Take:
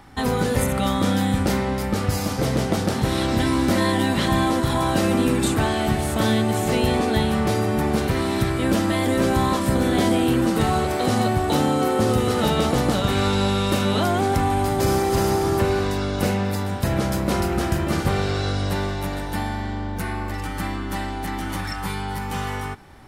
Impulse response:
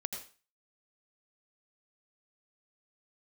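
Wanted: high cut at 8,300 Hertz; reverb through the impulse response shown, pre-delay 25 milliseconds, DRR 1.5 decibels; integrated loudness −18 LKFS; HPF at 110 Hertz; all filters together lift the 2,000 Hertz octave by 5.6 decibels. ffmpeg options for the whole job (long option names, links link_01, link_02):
-filter_complex "[0:a]highpass=110,lowpass=8300,equalizer=frequency=2000:width_type=o:gain=7,asplit=2[link_01][link_02];[1:a]atrim=start_sample=2205,adelay=25[link_03];[link_02][link_03]afir=irnorm=-1:irlink=0,volume=-2dB[link_04];[link_01][link_04]amix=inputs=2:normalize=0,volume=1dB"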